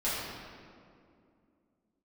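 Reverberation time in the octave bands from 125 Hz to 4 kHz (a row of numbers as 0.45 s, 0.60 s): 2.7 s, 3.4 s, 2.6 s, 2.1 s, 1.7 s, 1.3 s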